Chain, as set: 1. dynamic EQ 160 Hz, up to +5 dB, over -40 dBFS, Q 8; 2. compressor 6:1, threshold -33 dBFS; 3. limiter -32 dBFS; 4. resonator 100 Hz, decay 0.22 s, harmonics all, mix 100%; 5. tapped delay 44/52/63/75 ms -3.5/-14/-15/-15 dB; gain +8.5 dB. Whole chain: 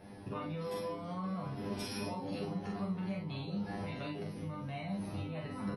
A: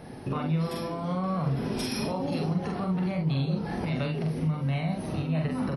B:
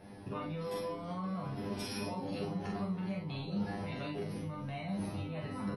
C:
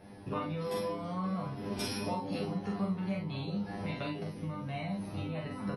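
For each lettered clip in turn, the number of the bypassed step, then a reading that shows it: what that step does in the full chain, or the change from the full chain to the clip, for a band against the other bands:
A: 4, 125 Hz band +4.5 dB; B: 2, mean gain reduction 7.5 dB; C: 3, mean gain reduction 2.5 dB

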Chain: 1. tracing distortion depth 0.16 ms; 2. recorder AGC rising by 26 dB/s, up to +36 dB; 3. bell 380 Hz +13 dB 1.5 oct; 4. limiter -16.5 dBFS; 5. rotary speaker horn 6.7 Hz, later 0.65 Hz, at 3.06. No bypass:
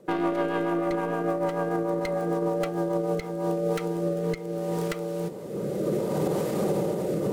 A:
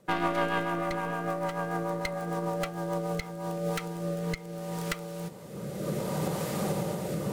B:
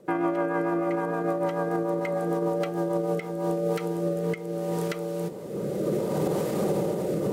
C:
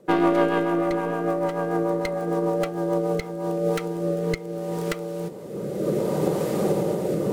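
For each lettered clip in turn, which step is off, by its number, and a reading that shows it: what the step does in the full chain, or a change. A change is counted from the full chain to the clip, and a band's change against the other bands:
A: 3, 500 Hz band -7.5 dB; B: 1, 4 kHz band -2.0 dB; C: 4, mean gain reduction 2.0 dB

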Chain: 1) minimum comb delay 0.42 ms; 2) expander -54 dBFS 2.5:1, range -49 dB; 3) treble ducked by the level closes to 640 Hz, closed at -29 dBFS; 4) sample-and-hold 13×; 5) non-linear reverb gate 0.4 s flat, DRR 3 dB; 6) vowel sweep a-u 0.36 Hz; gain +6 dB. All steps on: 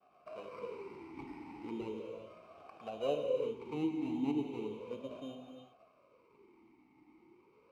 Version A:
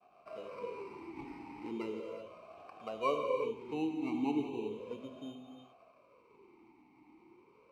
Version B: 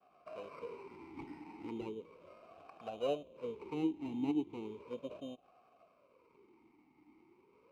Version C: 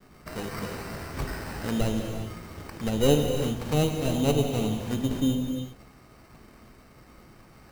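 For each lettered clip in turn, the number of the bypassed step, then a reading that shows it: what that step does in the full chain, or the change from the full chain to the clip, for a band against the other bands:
1, 1 kHz band +6.0 dB; 5, momentary loudness spread change +1 LU; 6, 125 Hz band +12.5 dB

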